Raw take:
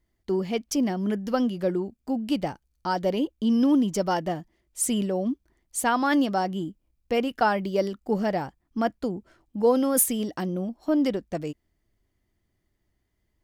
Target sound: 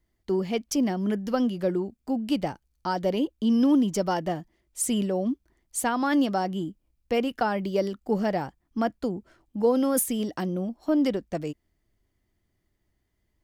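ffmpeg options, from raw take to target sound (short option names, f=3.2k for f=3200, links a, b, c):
-filter_complex "[0:a]acrossover=split=430[a][b];[b]acompressor=threshold=-23dB:ratio=6[c];[a][c]amix=inputs=2:normalize=0"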